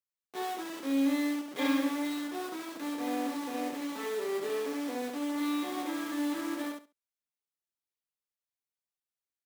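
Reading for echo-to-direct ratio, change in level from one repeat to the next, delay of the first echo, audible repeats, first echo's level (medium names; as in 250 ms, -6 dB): -3.5 dB, -15.0 dB, 69 ms, 3, -3.5 dB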